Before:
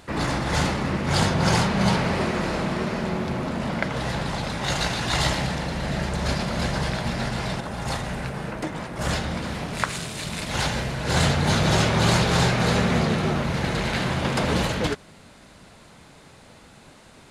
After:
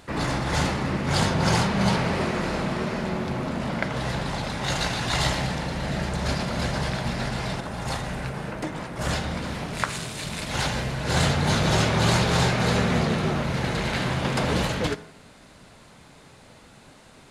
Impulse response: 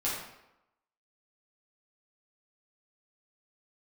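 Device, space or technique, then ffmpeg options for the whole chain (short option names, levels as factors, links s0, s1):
saturated reverb return: -filter_complex "[0:a]asplit=2[s0][s1];[1:a]atrim=start_sample=2205[s2];[s1][s2]afir=irnorm=-1:irlink=0,asoftclip=type=tanh:threshold=0.447,volume=0.112[s3];[s0][s3]amix=inputs=2:normalize=0,volume=0.794"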